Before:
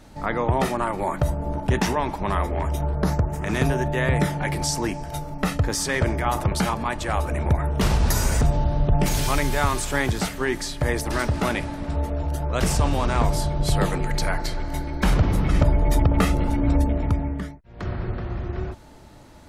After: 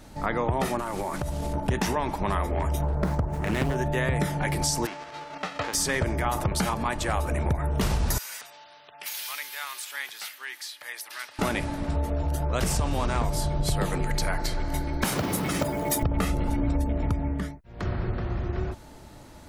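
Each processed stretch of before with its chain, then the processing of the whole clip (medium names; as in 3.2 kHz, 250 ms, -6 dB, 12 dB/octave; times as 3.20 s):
0.79–1.53 s: one-bit delta coder 64 kbps, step -34.5 dBFS + compression 10:1, threshold -25 dBFS
2.83–3.76 s: median filter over 9 samples + loudspeaker Doppler distortion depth 0.45 ms
4.85–5.73 s: formants flattened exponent 0.3 + high-pass 580 Hz 6 dB/octave + tape spacing loss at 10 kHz 37 dB
8.18–11.39 s: Bessel high-pass 2.9 kHz + peaking EQ 7.6 kHz -12 dB 1.2 oct
15.04–16.03 s: high-pass 190 Hz + treble shelf 5.4 kHz +11 dB + companded quantiser 6-bit
whole clip: treble shelf 8.2 kHz +5.5 dB; compression 4:1, threshold -22 dBFS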